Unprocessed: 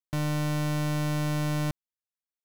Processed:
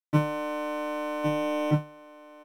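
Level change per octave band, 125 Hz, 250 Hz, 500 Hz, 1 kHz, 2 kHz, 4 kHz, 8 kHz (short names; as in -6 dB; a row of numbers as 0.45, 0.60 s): -3.5, +1.0, +7.5, +5.0, +0.5, -4.0, -9.5 dB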